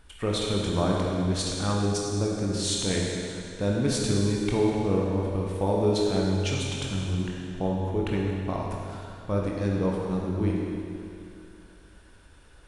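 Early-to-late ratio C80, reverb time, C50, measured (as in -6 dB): 0.5 dB, 2.6 s, -1.0 dB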